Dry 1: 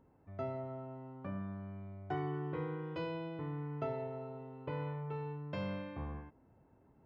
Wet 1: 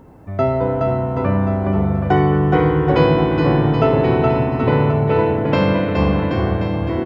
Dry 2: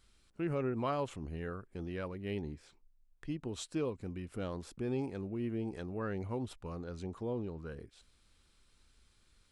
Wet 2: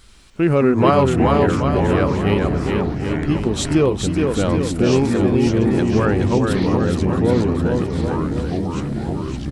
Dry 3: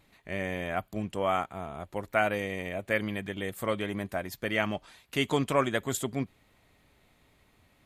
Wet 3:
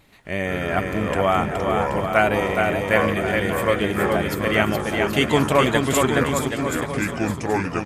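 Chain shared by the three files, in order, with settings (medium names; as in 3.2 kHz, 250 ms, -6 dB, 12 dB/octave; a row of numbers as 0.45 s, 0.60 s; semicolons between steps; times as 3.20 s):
bouncing-ball echo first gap 420 ms, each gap 0.85×, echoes 5; ever faster or slower copies 86 ms, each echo -5 st, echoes 2, each echo -6 dB; peak normalisation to -2 dBFS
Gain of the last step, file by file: +22.0 dB, +19.0 dB, +8.0 dB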